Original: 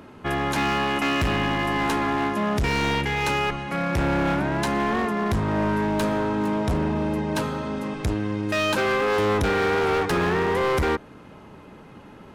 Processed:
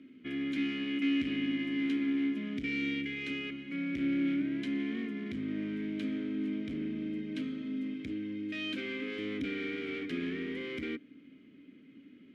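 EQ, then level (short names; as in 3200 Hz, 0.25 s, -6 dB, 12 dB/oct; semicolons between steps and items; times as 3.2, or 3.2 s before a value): vowel filter i; 0.0 dB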